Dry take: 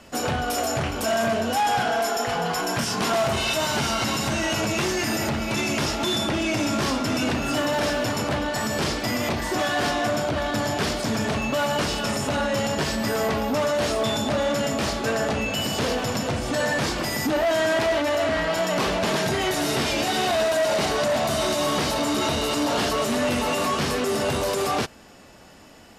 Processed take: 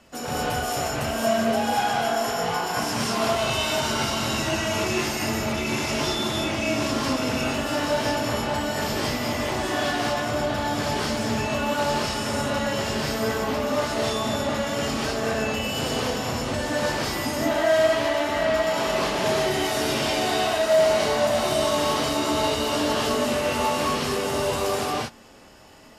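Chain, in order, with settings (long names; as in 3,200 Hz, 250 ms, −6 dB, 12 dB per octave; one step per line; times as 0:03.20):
reverb whose tail is shaped and stops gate 250 ms rising, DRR −5.5 dB
level −7 dB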